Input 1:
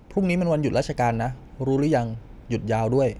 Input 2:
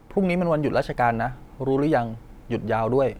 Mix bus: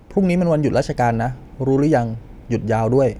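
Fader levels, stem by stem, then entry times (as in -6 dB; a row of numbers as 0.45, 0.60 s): +2.5, -4.0 dB; 0.00, 0.00 s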